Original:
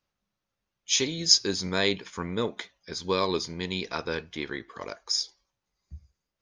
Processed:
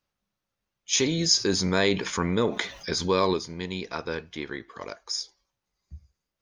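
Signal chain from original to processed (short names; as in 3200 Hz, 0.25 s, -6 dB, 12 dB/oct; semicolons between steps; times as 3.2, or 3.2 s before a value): dynamic EQ 3800 Hz, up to -5 dB, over -40 dBFS, Q 0.86; 0.93–3.34 fast leveller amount 50%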